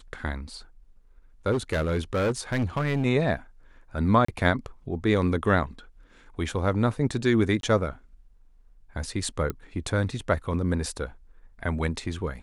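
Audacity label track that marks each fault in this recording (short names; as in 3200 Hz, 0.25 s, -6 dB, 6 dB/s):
1.510000	3.060000	clipped -21 dBFS
4.250000	4.280000	gap 34 ms
7.610000	7.630000	gap 22 ms
9.500000	9.500000	pop -17 dBFS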